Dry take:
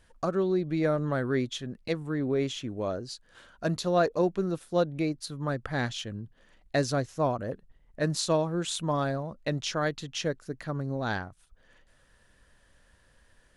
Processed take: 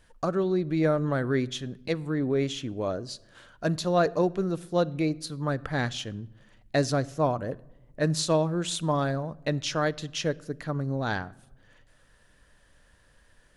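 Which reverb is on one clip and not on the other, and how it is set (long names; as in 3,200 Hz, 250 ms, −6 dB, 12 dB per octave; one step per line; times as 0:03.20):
rectangular room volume 3,800 cubic metres, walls furnished, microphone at 0.41 metres
level +1.5 dB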